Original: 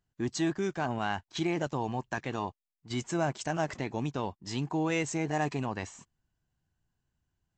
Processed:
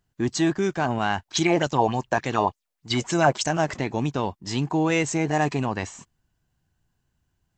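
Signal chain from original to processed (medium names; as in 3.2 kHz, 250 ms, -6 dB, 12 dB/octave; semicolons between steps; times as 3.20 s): 1.25–3.49 s: sweeping bell 3.4 Hz 510–7400 Hz +12 dB; trim +7.5 dB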